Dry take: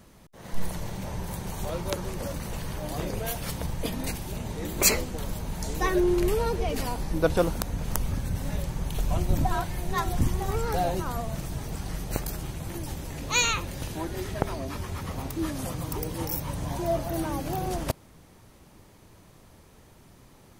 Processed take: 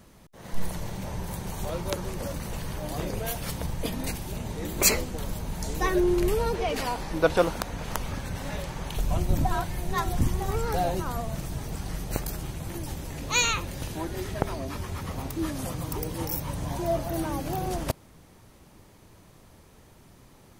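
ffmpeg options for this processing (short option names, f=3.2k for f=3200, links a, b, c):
-filter_complex "[0:a]asettb=1/sr,asplit=3[a][b][c];[a]atrim=end=6.544[d];[b]atrim=start=6.54:end=8.96,asetpts=PTS-STARTPTS,afade=t=in:d=0.004:c=qsin,afade=t=out:st=2.416:d=0.004:c=qsin,asplit=2[e][f];[f]highpass=f=720:p=1,volume=10dB,asoftclip=type=tanh:threshold=-1.5dB[g];[e][g]amix=inputs=2:normalize=0,lowpass=f=3.8k:p=1,volume=-6dB[h];[c]atrim=start=8.956[i];[d][h]acrossfade=d=0.004:c1=hsin:c2=qsin[j];[j][i]acrossfade=d=0.004:c1=qsin:c2=hsin"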